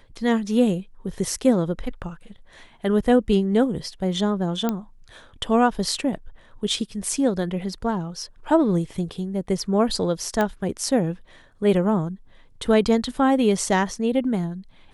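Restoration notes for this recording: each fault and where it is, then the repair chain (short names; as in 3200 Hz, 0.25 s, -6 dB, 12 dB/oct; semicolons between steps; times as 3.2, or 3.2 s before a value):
4.69 pop -10 dBFS
10.41 pop -10 dBFS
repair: de-click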